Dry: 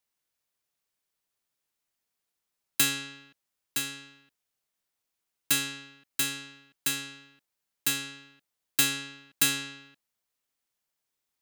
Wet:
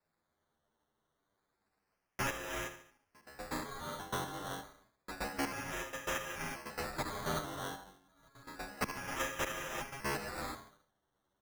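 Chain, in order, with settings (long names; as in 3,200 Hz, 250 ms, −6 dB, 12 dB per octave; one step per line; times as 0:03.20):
slices reordered back to front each 121 ms, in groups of 6
reversed playback
downward compressor 6 to 1, threshold −33 dBFS, peak gain reduction 14.5 dB
reversed playback
low-shelf EQ 380 Hz −9.5 dB
repeating echo 72 ms, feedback 46%, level −10 dB
reverb whose tail is shaped and stops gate 400 ms rising, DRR 2.5 dB
sample-and-hold swept by an LFO 14×, swing 60% 0.29 Hz
barber-pole flanger 9.3 ms −0.31 Hz
level +2.5 dB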